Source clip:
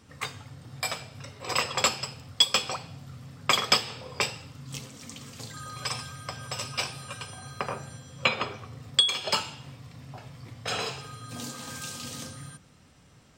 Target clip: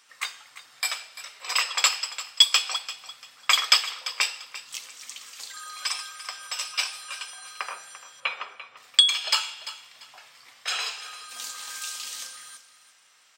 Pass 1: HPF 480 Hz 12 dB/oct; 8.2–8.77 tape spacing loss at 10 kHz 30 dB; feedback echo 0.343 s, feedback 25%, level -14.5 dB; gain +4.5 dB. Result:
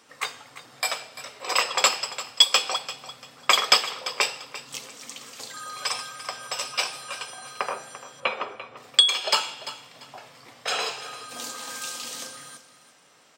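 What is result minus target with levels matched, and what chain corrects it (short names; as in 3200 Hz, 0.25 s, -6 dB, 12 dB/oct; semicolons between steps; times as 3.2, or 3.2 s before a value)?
500 Hz band +14.0 dB
HPF 1400 Hz 12 dB/oct; 8.2–8.77 tape spacing loss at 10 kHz 30 dB; feedback echo 0.343 s, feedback 25%, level -14.5 dB; gain +4.5 dB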